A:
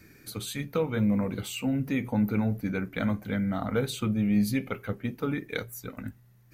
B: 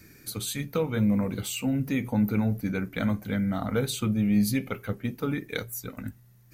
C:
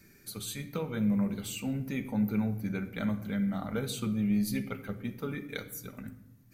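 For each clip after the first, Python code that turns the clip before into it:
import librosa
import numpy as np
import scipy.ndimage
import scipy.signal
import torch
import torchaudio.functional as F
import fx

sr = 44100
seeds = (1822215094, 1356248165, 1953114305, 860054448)

y1 = fx.bass_treble(x, sr, bass_db=2, treble_db=6)
y2 = fx.room_shoebox(y1, sr, seeds[0], volume_m3=3300.0, walls='furnished', distance_m=1.2)
y2 = F.gain(torch.from_numpy(y2), -6.5).numpy()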